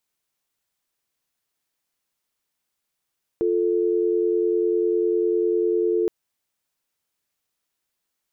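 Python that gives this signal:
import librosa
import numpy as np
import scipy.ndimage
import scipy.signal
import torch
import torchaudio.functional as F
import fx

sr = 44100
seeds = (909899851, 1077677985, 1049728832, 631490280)

y = fx.call_progress(sr, length_s=2.67, kind='dial tone', level_db=-21.0)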